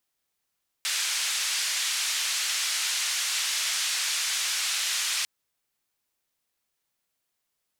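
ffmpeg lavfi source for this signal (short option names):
-f lavfi -i "anoisesrc=c=white:d=4.4:r=44100:seed=1,highpass=f=1800,lowpass=f=7100,volume=-17.1dB"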